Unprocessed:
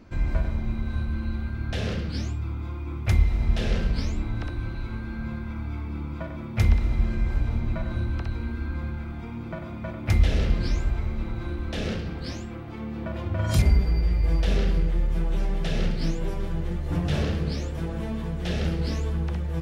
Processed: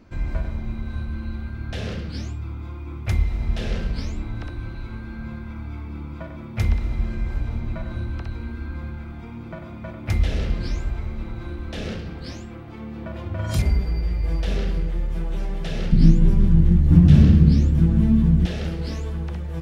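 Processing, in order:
0:15.92–0:18.46: low shelf with overshoot 340 Hz +13.5 dB, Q 1.5
level −1 dB

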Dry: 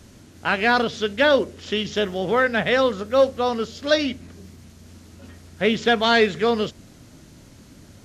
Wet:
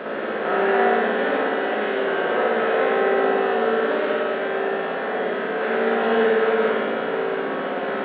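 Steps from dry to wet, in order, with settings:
compressor on every frequency bin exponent 0.2
three-way crossover with the lows and the highs turned down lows −19 dB, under 170 Hz, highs −22 dB, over 3,800 Hz
hum with harmonics 400 Hz, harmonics 13, −32 dBFS −5 dB per octave
high-frequency loss of the air 410 metres
tuned comb filter 56 Hz, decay 1.5 s, harmonics all, mix 90%
backwards echo 56 ms −13.5 dB
spring reverb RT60 1.8 s, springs 56 ms, chirp 70 ms, DRR −4 dB

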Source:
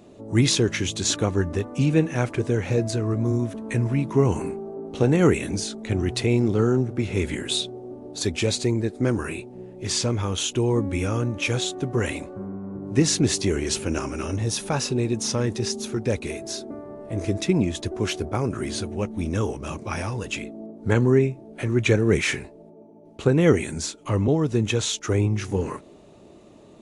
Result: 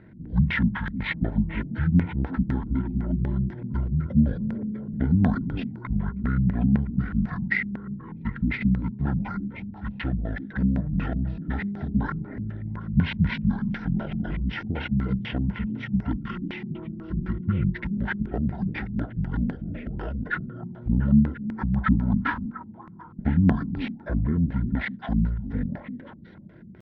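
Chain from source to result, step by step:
hum removal 72.38 Hz, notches 39
in parallel at −1 dB: downward compressor 4 to 1, threshold −32 dBFS, peak gain reduction 16.5 dB
on the sum: echo through a band-pass that steps 346 ms, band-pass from 640 Hz, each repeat 1.4 octaves, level −4.5 dB
auto-filter low-pass square 4 Hz 370–3,200 Hz
pitch shifter −10.5 semitones
Butterworth band-reject 1,200 Hz, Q 5.8
level −5.5 dB

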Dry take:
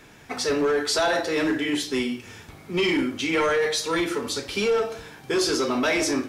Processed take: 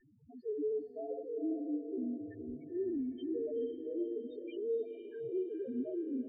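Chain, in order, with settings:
treble cut that deepens with the level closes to 1,100 Hz, closed at −19.5 dBFS
parametric band 960 Hz +3 dB 1.2 octaves
in parallel at −8.5 dB: wrap-around overflow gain 29.5 dB
on the sum: spectral peaks only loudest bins 1
high-frequency loss of the air 240 metres
phaser with its sweep stopped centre 2,000 Hz, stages 4
on a send: feedback delay with all-pass diffusion 498 ms, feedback 46%, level −7.5 dB
on the sum: level −3.5 dB

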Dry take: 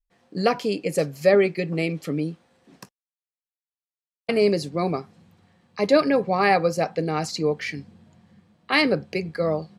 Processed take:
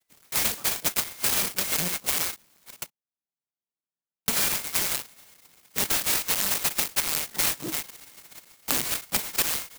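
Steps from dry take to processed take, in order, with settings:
neighbouring bands swapped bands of 2,000 Hz
linear-prediction vocoder at 8 kHz pitch kept
transient designer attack +8 dB, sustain −1 dB
low-shelf EQ 210 Hz +10.5 dB
wrap-around overflow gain 6 dB
high-pass filter 160 Hz 24 dB per octave
soft clipping −12 dBFS, distortion −13 dB
high-shelf EQ 3,100 Hz +4 dB, from 0:06.06 +11.5 dB
downward compressor 5 to 1, threshold −24 dBFS, peak gain reduction 16.5 dB
converter with an unsteady clock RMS 0.14 ms
level +1 dB

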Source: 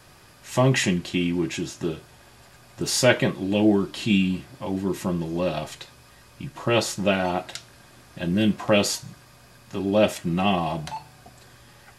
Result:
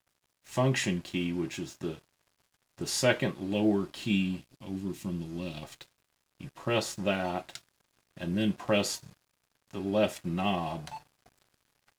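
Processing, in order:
0:04.39–0:05.63: flat-topped bell 860 Hz −10.5 dB 2.4 octaves
dead-zone distortion −45.5 dBFS
level −7 dB

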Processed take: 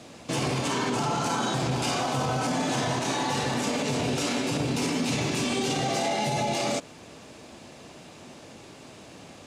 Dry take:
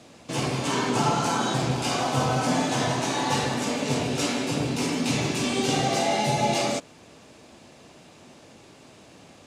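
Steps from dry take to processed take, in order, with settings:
brickwall limiter −22 dBFS, peak gain reduction 10.5 dB
level +3.5 dB

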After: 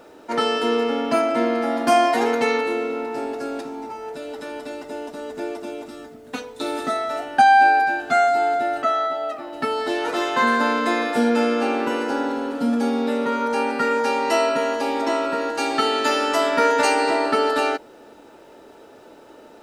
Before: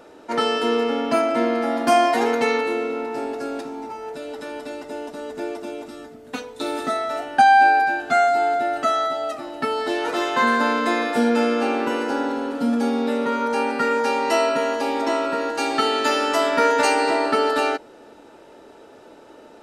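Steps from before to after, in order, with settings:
0:08.82–0:09.53: bass and treble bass −7 dB, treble −11 dB
bit reduction 11 bits

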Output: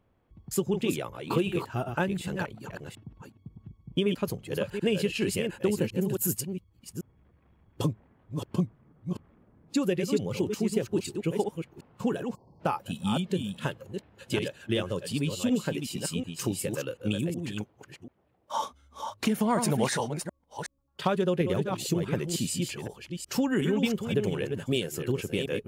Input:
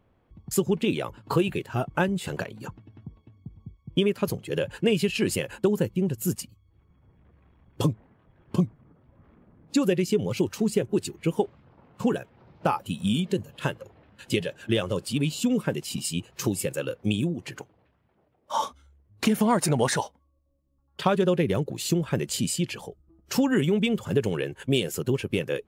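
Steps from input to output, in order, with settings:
delay that plays each chunk backwards 369 ms, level −6 dB
0:06.01–0:06.41: high-shelf EQ 6,900 Hz +11.5 dB
0:12.35–0:12.60: time-frequency box erased 1,100–4,200 Hz
level −4 dB

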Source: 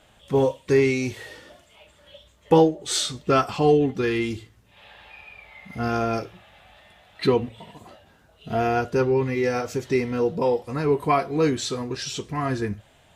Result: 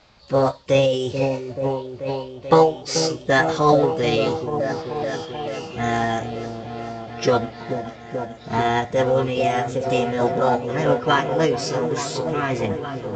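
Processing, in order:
echo whose low-pass opens from repeat to repeat 435 ms, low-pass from 400 Hz, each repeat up 1 octave, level −6 dB
formants moved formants +5 semitones
level +2 dB
mu-law 128 kbit/s 16,000 Hz

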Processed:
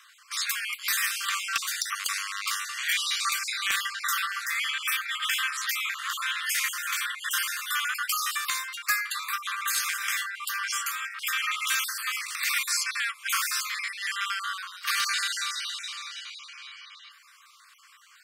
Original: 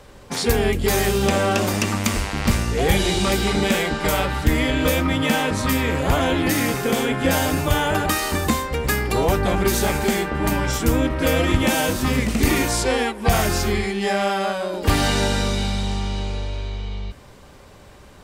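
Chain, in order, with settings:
time-frequency cells dropped at random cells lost 33%
Chebyshev high-pass filter 1,100 Hz, order 8
wave folding −15.5 dBFS

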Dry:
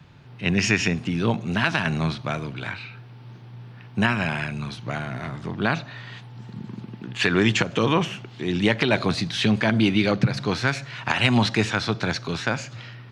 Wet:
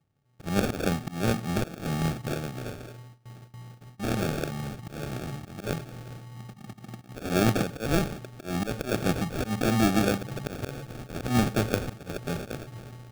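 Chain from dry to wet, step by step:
volume swells 166 ms
noise gate with hold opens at −35 dBFS
sample-rate reduction 1,000 Hz, jitter 0%
on a send: convolution reverb RT60 0.45 s, pre-delay 48 ms, DRR 22.5 dB
on the sum: level −3 dB

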